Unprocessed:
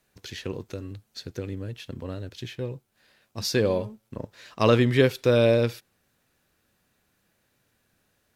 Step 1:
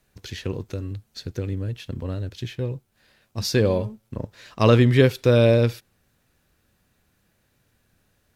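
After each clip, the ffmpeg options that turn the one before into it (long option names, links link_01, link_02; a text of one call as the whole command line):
ffmpeg -i in.wav -af "lowshelf=frequency=130:gain=10,volume=1.5dB" out.wav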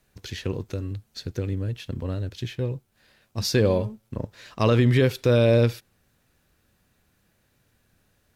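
ffmpeg -i in.wav -af "alimiter=limit=-10dB:level=0:latency=1:release=63" out.wav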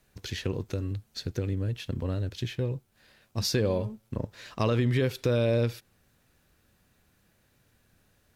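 ffmpeg -i in.wav -af "acompressor=threshold=-27dB:ratio=2" out.wav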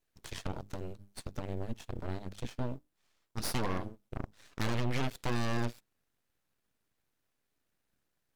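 ffmpeg -i in.wav -af "bandreject=frequency=50:width_type=h:width=6,bandreject=frequency=100:width_type=h:width=6,bandreject=frequency=150:width_type=h:width=6,aeval=exprs='0.224*(cos(1*acos(clip(val(0)/0.224,-1,1)))-cos(1*PI/2))+0.0631*(cos(3*acos(clip(val(0)/0.224,-1,1)))-cos(3*PI/2))+0.00562*(cos(5*acos(clip(val(0)/0.224,-1,1)))-cos(5*PI/2))+0.0316*(cos(8*acos(clip(val(0)/0.224,-1,1)))-cos(8*PI/2))':channel_layout=same,aeval=exprs='abs(val(0))':channel_layout=same,volume=-2.5dB" out.wav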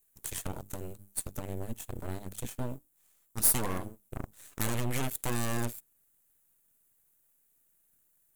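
ffmpeg -i in.wav -af "aexciter=amount=4.7:drive=8.6:freq=7100" out.wav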